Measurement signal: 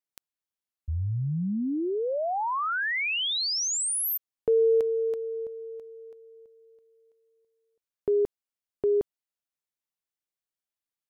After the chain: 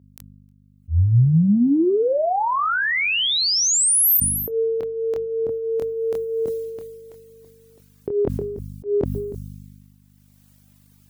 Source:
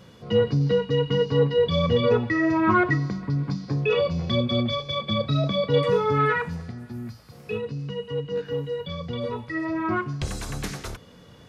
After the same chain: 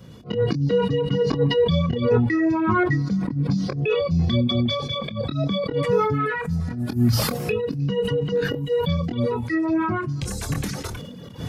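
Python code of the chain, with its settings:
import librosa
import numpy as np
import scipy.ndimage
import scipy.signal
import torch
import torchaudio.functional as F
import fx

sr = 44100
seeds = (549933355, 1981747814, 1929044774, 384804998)

y = fx.recorder_agc(x, sr, target_db=-15.5, rise_db_per_s=19.0, max_gain_db=32)
y = fx.low_shelf(y, sr, hz=320.0, db=11.0)
y = fx.auto_swell(y, sr, attack_ms=116.0)
y = fx.doubler(y, sr, ms=25.0, db=-9)
y = y + 10.0 ** (-22.0 / 20.0) * np.pad(y, (int(312 * sr / 1000.0), 0))[:len(y)]
y = fx.add_hum(y, sr, base_hz=50, snr_db=27)
y = scipy.signal.sosfilt(scipy.signal.butter(2, 86.0, 'highpass', fs=sr, output='sos'), y)
y = fx.high_shelf(y, sr, hz=7300.0, db=7.5)
y = fx.dereverb_blind(y, sr, rt60_s=1.5)
y = fx.sustainer(y, sr, db_per_s=38.0)
y = y * 10.0 ** (-4.0 / 20.0)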